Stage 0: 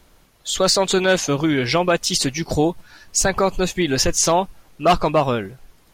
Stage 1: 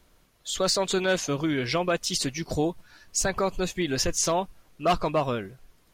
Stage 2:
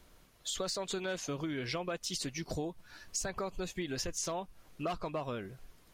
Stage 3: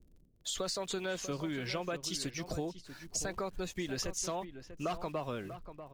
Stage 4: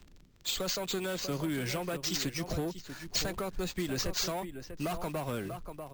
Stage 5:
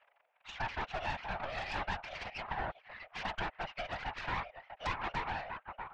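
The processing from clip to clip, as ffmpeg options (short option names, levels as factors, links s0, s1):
-af "bandreject=f=830:w=12,volume=0.422"
-af "acompressor=threshold=0.0158:ratio=4"
-filter_complex "[0:a]acrossover=split=420[s0][s1];[s1]aeval=exprs='val(0)*gte(abs(val(0)),0.00141)':c=same[s2];[s0][s2]amix=inputs=2:normalize=0,asplit=2[s3][s4];[s4]adelay=641.4,volume=0.282,highshelf=f=4000:g=-14.4[s5];[s3][s5]amix=inputs=2:normalize=0"
-filter_complex "[0:a]acrossover=split=260|5700[s0][s1][s2];[s1]asoftclip=type=tanh:threshold=0.0133[s3];[s2]acompressor=mode=upward:threshold=0.00141:ratio=2.5[s4];[s0][s3][s4]amix=inputs=3:normalize=0,acrusher=samples=4:mix=1:aa=0.000001,volume=1.88"
-af "highpass=f=410:t=q:w=0.5412,highpass=f=410:t=q:w=1.307,lowpass=f=2400:t=q:w=0.5176,lowpass=f=2400:t=q:w=0.7071,lowpass=f=2400:t=q:w=1.932,afreqshift=310,aeval=exprs='0.0531*(cos(1*acos(clip(val(0)/0.0531,-1,1)))-cos(1*PI/2))+0.0188*(cos(3*acos(clip(val(0)/0.0531,-1,1)))-cos(3*PI/2))+0.015*(cos(4*acos(clip(val(0)/0.0531,-1,1)))-cos(4*PI/2))+0.015*(cos(5*acos(clip(val(0)/0.0531,-1,1)))-cos(5*PI/2))+0.00335*(cos(7*acos(clip(val(0)/0.0531,-1,1)))-cos(7*PI/2))':c=same,afftfilt=real='hypot(re,im)*cos(2*PI*random(0))':imag='hypot(re,im)*sin(2*PI*random(1))':win_size=512:overlap=0.75,volume=2.24"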